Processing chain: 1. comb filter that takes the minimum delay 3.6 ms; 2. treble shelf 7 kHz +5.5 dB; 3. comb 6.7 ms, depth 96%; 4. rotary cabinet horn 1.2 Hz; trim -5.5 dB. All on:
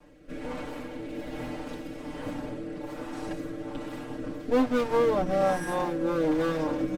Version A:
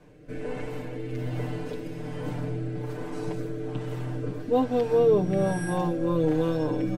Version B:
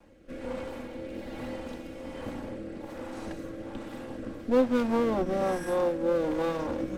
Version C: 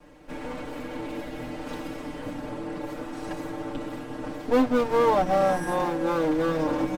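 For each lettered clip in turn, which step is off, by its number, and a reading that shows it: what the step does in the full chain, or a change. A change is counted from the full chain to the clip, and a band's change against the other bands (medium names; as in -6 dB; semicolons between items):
1, 125 Hz band +12.0 dB; 3, 500 Hz band +2.0 dB; 4, 1 kHz band +3.0 dB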